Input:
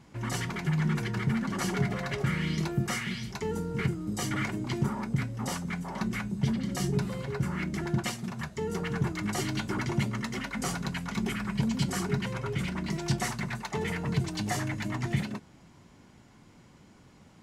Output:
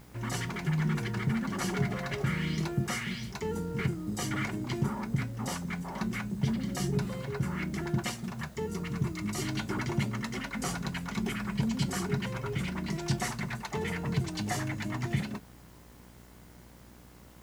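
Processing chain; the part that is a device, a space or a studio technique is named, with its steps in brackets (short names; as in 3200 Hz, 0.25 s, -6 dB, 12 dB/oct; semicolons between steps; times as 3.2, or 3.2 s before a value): 8.66–9.42 thirty-one-band EQ 500 Hz -10 dB, 800 Hz -11 dB, 1600 Hz -11 dB, 3150 Hz -4 dB; video cassette with head-switching buzz (buzz 60 Hz, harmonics 35, -54 dBFS -5 dB/oct; white noise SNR 30 dB); gain -1.5 dB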